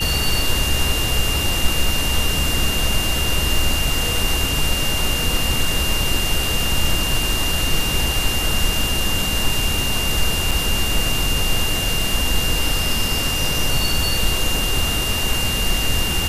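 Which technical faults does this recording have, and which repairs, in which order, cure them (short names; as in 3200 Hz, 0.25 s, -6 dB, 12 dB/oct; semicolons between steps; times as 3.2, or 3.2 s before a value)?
tone 2800 Hz -23 dBFS
10.51 gap 4.4 ms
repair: notch 2800 Hz, Q 30; interpolate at 10.51, 4.4 ms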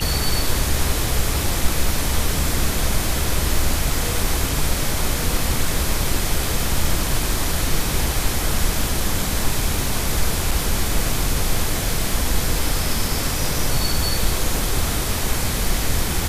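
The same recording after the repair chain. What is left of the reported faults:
none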